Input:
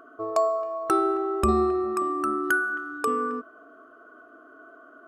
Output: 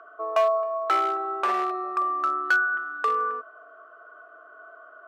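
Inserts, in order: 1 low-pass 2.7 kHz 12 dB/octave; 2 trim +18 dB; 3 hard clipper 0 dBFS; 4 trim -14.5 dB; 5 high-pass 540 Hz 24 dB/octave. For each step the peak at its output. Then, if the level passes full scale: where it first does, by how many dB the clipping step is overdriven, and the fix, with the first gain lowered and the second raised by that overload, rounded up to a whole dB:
-9.5 dBFS, +8.5 dBFS, 0.0 dBFS, -14.5 dBFS, -11.5 dBFS; step 2, 8.5 dB; step 2 +9 dB, step 4 -5.5 dB

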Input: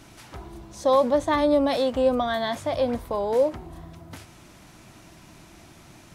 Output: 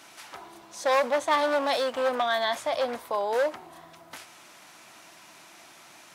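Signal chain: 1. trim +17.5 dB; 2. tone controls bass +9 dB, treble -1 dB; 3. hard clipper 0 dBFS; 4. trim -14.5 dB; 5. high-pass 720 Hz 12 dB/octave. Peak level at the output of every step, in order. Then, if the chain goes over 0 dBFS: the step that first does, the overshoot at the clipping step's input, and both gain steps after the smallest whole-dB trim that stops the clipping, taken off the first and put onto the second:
+7.5 dBFS, +8.5 dBFS, 0.0 dBFS, -14.5 dBFS, -11.5 dBFS; step 1, 8.5 dB; step 1 +8.5 dB, step 4 -5.5 dB

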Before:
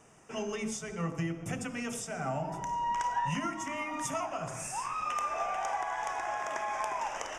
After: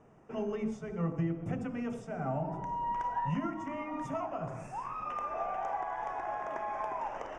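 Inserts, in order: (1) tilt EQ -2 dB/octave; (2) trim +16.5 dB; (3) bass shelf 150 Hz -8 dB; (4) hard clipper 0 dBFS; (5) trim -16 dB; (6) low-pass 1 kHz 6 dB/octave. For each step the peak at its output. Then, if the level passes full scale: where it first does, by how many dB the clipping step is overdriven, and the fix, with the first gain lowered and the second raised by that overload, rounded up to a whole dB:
-19.0 dBFS, -2.5 dBFS, -3.5 dBFS, -3.5 dBFS, -19.5 dBFS, -22.5 dBFS; nothing clips

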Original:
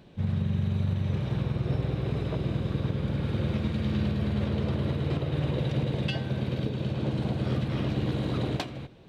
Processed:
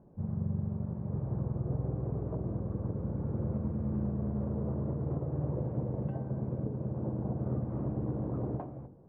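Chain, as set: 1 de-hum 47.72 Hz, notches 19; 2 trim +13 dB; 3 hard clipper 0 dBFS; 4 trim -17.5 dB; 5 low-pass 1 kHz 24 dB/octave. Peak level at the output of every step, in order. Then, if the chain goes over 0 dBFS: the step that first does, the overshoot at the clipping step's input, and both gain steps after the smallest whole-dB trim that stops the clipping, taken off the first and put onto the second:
-17.5 dBFS, -4.5 dBFS, -4.5 dBFS, -22.0 dBFS, -22.0 dBFS; nothing clips

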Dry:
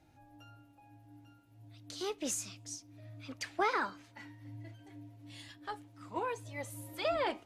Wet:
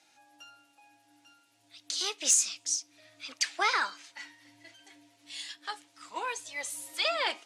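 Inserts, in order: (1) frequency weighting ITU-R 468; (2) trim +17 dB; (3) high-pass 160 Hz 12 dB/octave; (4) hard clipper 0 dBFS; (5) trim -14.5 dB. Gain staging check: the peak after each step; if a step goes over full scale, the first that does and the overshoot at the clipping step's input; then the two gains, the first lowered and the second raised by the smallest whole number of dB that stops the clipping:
-14.0 dBFS, +3.0 dBFS, +3.0 dBFS, 0.0 dBFS, -14.5 dBFS; step 2, 3.0 dB; step 2 +14 dB, step 5 -11.5 dB

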